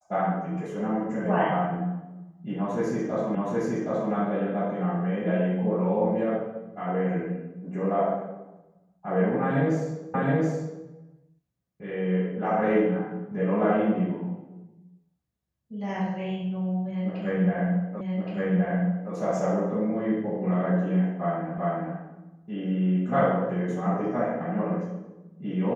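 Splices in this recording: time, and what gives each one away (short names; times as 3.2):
3.35 repeat of the last 0.77 s
10.14 repeat of the last 0.72 s
18.01 repeat of the last 1.12 s
21.58 repeat of the last 0.39 s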